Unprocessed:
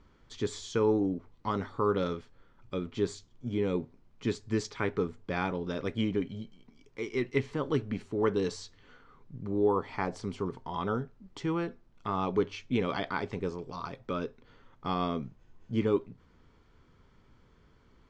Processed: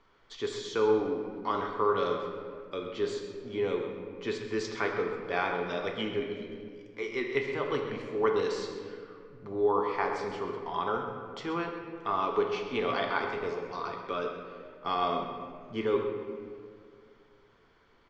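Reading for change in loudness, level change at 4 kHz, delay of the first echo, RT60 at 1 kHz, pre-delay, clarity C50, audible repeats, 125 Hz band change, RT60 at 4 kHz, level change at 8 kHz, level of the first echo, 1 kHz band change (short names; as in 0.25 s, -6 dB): +0.5 dB, +3.0 dB, 0.13 s, 1.8 s, 3 ms, 4.0 dB, 1, -8.5 dB, 1.3 s, n/a, -11.5 dB, +4.5 dB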